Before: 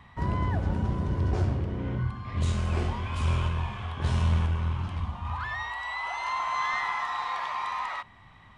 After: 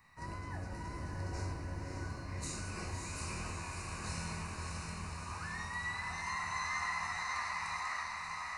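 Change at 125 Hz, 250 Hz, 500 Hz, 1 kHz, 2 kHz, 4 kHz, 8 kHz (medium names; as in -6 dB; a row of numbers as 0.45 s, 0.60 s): -15.0 dB, -12.0 dB, -11.0 dB, -9.0 dB, -4.5 dB, -5.5 dB, +5.5 dB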